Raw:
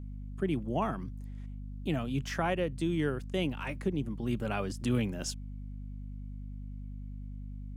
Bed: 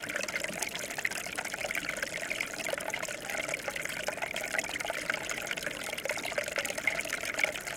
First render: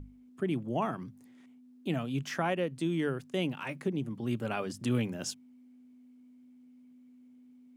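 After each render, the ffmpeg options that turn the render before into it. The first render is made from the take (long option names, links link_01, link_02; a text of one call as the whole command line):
ffmpeg -i in.wav -af "bandreject=frequency=50:width_type=h:width=6,bandreject=frequency=100:width_type=h:width=6,bandreject=frequency=150:width_type=h:width=6,bandreject=frequency=200:width_type=h:width=6" out.wav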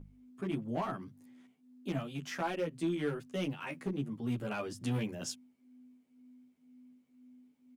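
ffmpeg -i in.wav -filter_complex "[0:a]asoftclip=type=hard:threshold=-25dB,asplit=2[link_01][link_02];[link_02]adelay=11.6,afreqshift=2[link_03];[link_01][link_03]amix=inputs=2:normalize=1" out.wav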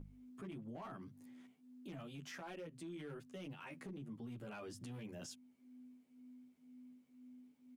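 ffmpeg -i in.wav -af "acompressor=threshold=-49dB:ratio=2,alimiter=level_in=17.5dB:limit=-24dB:level=0:latency=1:release=13,volume=-17.5dB" out.wav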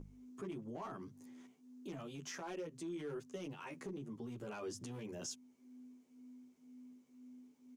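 ffmpeg -i in.wav -af "equalizer=frequency=400:width_type=o:width=0.67:gain=8,equalizer=frequency=1000:width_type=o:width=0.67:gain=5,equalizer=frequency=6300:width_type=o:width=0.67:gain=10" out.wav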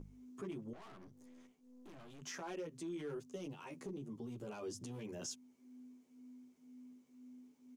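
ffmpeg -i in.wav -filter_complex "[0:a]asettb=1/sr,asplit=3[link_01][link_02][link_03];[link_01]atrim=end=0.734[link_04];[link_02]atrim=start=0.73:end=2.22,asetpts=PTS-STARTPTS,afade=type=in:duration=0.004:curve=qsin,afade=type=out:start_time=1.486:duration=0.004:curve=qsin,aeval=exprs='(tanh(501*val(0)+0.7)-tanh(0.7))/501':channel_layout=same[link_05];[link_03]atrim=start=2.216[link_06];[link_04][link_05]acrossfade=duration=0.004:curve1=hsin:curve2=qsin[link_07];[link_07][link_06]acrossfade=duration=0.004:curve1=qsin:curve2=hsin,asettb=1/sr,asplit=3[link_08][link_09][link_10];[link_08]atrim=end=3.154[link_11];[link_09]atrim=start=3.15:end=5,asetpts=PTS-STARTPTS,afade=type=in:duration=0.004:curve=qsin,afade=type=out:start_time=1.846:duration=0.004:curve=qsin,equalizer=frequency=1700:width=1.1:gain=-6[link_12];[link_10]atrim=start=4.996[link_13];[link_11][link_12]acrossfade=duration=0.004:curve1=hsin:curve2=qsin[link_14];[link_14][link_13]acrossfade=duration=0.004:curve1=qsin:curve2=hsin" out.wav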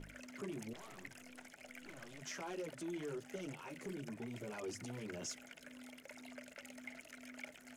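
ffmpeg -i in.wav -i bed.wav -filter_complex "[1:a]volume=-21.5dB[link_01];[0:a][link_01]amix=inputs=2:normalize=0" out.wav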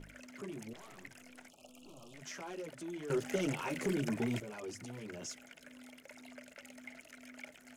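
ffmpeg -i in.wav -filter_complex "[0:a]asettb=1/sr,asplit=3[link_01][link_02][link_03];[link_01]atrim=end=1.504[link_04];[link_02]atrim=start=1.5:end=2.14,asetpts=PTS-STARTPTS,afade=type=in:duration=0.004:curve=qsin,afade=type=out:start_time=0.636:duration=0.004:curve=qsin,asuperstop=centerf=1800:order=12:qfactor=1.4[link_05];[link_03]atrim=start=2.136[link_06];[link_04][link_05]acrossfade=duration=0.004:curve1=hsin:curve2=qsin[link_07];[link_07][link_06]acrossfade=duration=0.004:curve1=qsin:curve2=hsin,asplit=3[link_08][link_09][link_10];[link_08]atrim=end=3.102[link_11];[link_09]atrim=start=3.098:end=4.402,asetpts=PTS-STARTPTS,volume=11.5dB[link_12];[link_10]atrim=start=4.398[link_13];[link_11][link_12]acrossfade=duration=0.004:curve1=hsin:curve2=hsin[link_14];[link_14][link_13]acrossfade=duration=0.004:curve1=hsin:curve2=hsin" out.wav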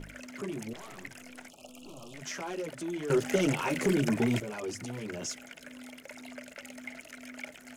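ffmpeg -i in.wav -af "volume=7.5dB" out.wav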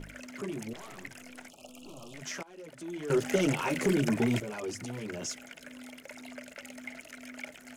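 ffmpeg -i in.wav -filter_complex "[0:a]asplit=2[link_01][link_02];[link_01]atrim=end=2.43,asetpts=PTS-STARTPTS,afade=type=out:start_time=2.426:duration=0.004:curve=hsin:silence=0.0794328[link_03];[link_02]atrim=start=2.43,asetpts=PTS-STARTPTS,afade=type=in:duration=0.78:silence=0.0794328[link_04];[link_03][link_04]concat=n=2:v=0:a=1" out.wav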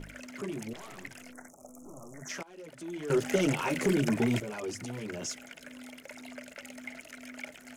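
ffmpeg -i in.wav -filter_complex "[0:a]asplit=3[link_01][link_02][link_03];[link_01]afade=type=out:start_time=1.31:duration=0.02[link_04];[link_02]asuperstop=centerf=3400:order=12:qfactor=0.9,afade=type=in:start_time=1.31:duration=0.02,afade=type=out:start_time=2.28:duration=0.02[link_05];[link_03]afade=type=in:start_time=2.28:duration=0.02[link_06];[link_04][link_05][link_06]amix=inputs=3:normalize=0" out.wav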